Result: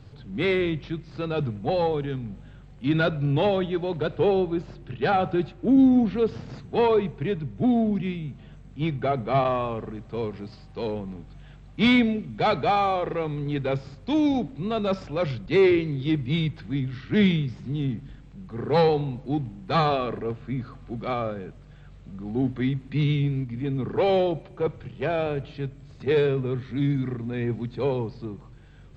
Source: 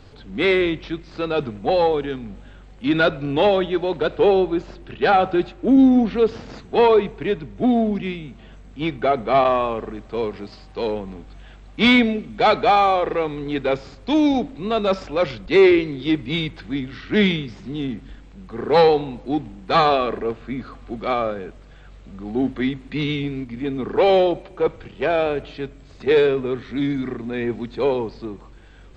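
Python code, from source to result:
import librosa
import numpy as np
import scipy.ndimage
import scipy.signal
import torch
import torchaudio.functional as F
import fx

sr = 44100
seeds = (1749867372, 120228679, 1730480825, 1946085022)

y = fx.peak_eq(x, sr, hz=130.0, db=14.5, octaves=1.0)
y = y * librosa.db_to_amplitude(-7.0)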